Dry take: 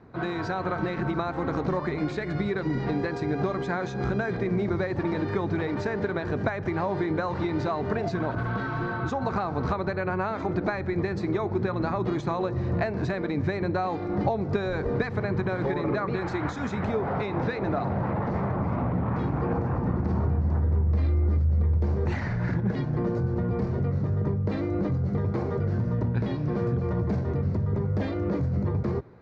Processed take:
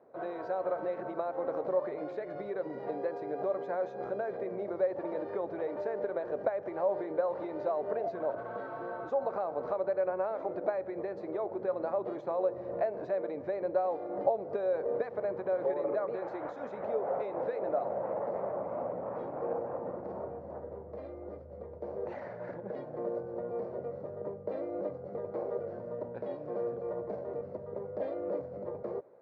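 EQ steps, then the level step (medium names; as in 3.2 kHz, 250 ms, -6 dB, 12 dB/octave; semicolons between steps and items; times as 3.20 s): band-pass filter 560 Hz, Q 4.6; tilt EQ +2 dB/octave; +5.5 dB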